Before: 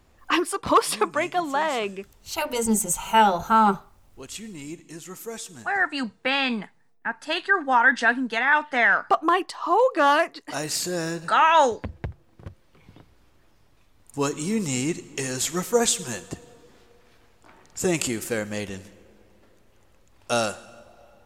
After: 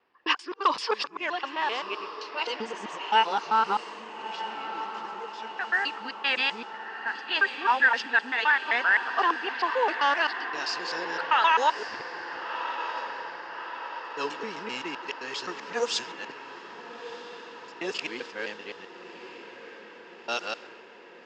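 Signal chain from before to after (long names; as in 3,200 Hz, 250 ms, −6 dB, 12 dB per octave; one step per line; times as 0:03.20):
reversed piece by piece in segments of 130 ms
loudspeaker in its box 390–5,500 Hz, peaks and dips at 430 Hz +4 dB, 630 Hz −5 dB, 960 Hz +5 dB, 1,700 Hz +5 dB, 2,800 Hz +7 dB, 5,000 Hz +8 dB
feedback delay with all-pass diffusion 1,318 ms, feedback 65%, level −10 dB
low-pass that shuts in the quiet parts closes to 2,200 Hz, open at −13 dBFS
high-shelf EQ 4,000 Hz +6 dB
level −7.5 dB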